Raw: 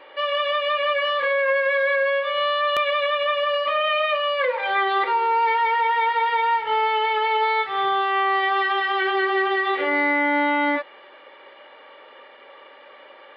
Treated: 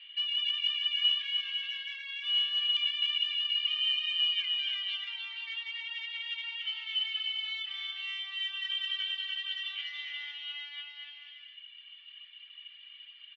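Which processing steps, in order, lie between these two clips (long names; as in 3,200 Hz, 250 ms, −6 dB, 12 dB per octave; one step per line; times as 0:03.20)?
reverb reduction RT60 1.8 s
in parallel at −0.5 dB: brickwall limiter −22.5 dBFS, peak gain reduction 8 dB
on the sum: downward compressor, threshold −21 dBFS, peak gain reduction 6 dB
soft clipping −17 dBFS, distortion −23 dB
four-pole ladder high-pass 2,800 Hz, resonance 80%
high-frequency loss of the air 92 metres
on a send: bouncing-ball delay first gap 290 ms, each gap 0.7×, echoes 5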